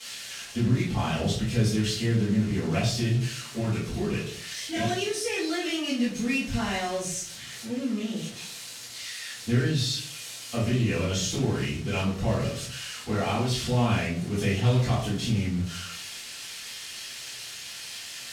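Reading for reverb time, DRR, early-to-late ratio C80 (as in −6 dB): 0.55 s, −10.5 dB, 8.5 dB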